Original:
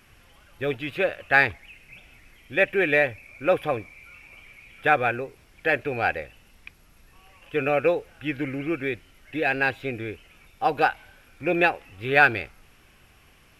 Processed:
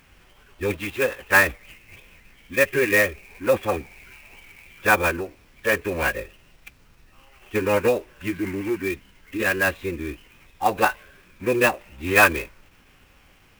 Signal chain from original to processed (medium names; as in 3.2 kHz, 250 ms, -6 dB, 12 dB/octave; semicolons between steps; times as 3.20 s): formant-preserving pitch shift -6 st; sampling jitter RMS 0.021 ms; trim +2.5 dB